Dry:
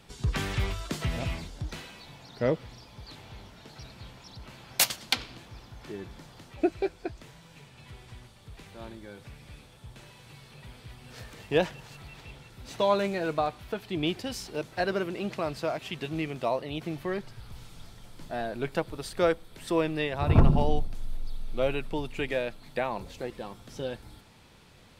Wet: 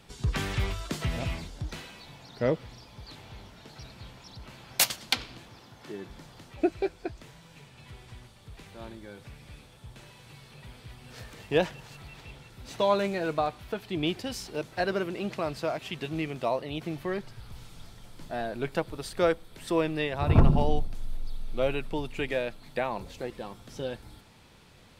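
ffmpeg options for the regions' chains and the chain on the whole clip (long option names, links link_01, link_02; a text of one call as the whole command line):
ffmpeg -i in.wav -filter_complex "[0:a]asettb=1/sr,asplit=3[link_01][link_02][link_03];[link_01]atrim=end=5.494[link_04];[link_02]atrim=start=5.49:end=6.1,asetpts=PTS-STARTPTS,afade=type=in:duration=0.004:curve=qsin,afade=type=out:start_time=0.606:duration=0.004:curve=qsin,highpass=140,bandreject=frequency=2400:width=27[link_05];[link_03]atrim=start=6.096[link_06];[link_04][link_05]acrossfade=duration=0.004:curve1=hsin:curve2=qsin[link_07];[link_07][link_06]acrossfade=duration=0.004:curve1=qsin:curve2=hsin" out.wav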